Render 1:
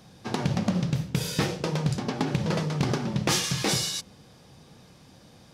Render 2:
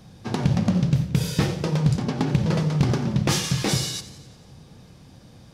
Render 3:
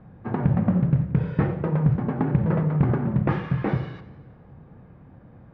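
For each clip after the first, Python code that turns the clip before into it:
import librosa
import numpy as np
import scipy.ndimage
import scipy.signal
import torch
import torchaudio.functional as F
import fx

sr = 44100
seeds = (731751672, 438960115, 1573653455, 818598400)

y1 = fx.low_shelf(x, sr, hz=180.0, db=10.5)
y1 = fx.echo_warbled(y1, sr, ms=89, feedback_pct=63, rate_hz=2.8, cents=81, wet_db=-16.0)
y2 = scipy.signal.sosfilt(scipy.signal.butter(4, 1800.0, 'lowpass', fs=sr, output='sos'), y1)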